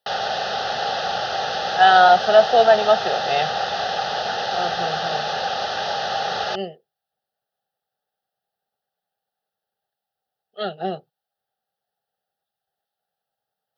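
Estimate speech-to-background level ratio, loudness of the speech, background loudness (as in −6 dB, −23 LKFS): 7.0 dB, −17.0 LKFS, −24.0 LKFS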